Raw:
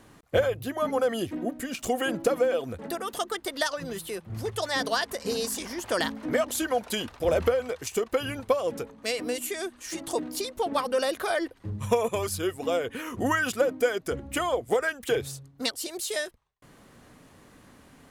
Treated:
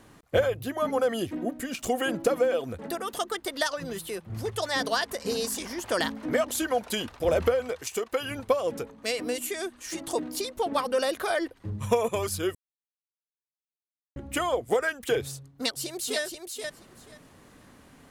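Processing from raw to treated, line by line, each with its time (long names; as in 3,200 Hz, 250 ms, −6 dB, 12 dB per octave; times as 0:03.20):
0:07.81–0:08.31: low-shelf EQ 320 Hz −8.5 dB
0:12.55–0:14.16: silence
0:15.28–0:16.21: delay throw 480 ms, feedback 15%, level −5.5 dB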